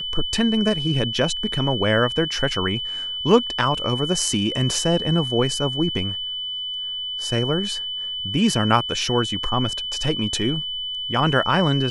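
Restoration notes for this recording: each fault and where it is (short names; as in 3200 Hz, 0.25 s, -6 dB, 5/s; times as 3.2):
tone 3000 Hz -26 dBFS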